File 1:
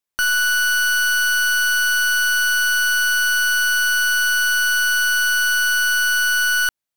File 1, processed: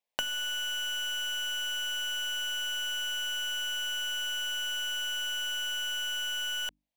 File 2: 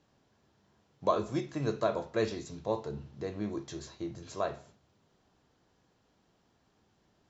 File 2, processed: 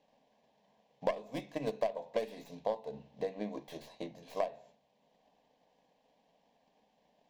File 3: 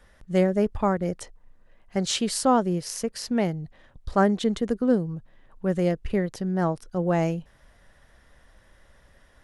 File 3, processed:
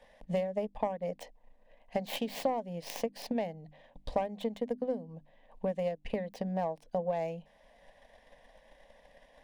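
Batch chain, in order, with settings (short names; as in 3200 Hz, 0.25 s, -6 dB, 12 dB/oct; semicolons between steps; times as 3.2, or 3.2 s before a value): tracing distortion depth 0.31 ms; transient shaper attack +7 dB, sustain -2 dB; tone controls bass -14 dB, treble -15 dB; fixed phaser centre 360 Hz, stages 6; compressor 4:1, threshold -37 dBFS; notches 50/100/150/200/250/300 Hz; gain +5.5 dB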